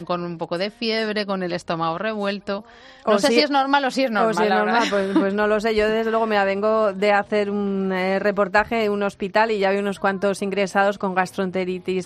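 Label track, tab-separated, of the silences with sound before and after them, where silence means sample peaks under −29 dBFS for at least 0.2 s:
2.600000	3.060000	silence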